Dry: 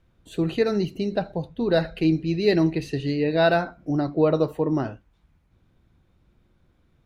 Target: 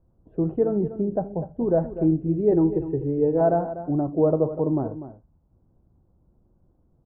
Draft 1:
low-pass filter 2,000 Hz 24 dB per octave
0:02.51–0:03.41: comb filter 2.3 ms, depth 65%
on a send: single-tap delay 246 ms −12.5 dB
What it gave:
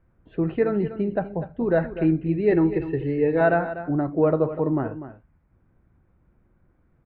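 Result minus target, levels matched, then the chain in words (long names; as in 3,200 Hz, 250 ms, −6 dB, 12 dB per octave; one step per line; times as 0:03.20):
2,000 Hz band +18.0 dB
low-pass filter 910 Hz 24 dB per octave
0:02.51–0:03.41: comb filter 2.3 ms, depth 65%
on a send: single-tap delay 246 ms −12.5 dB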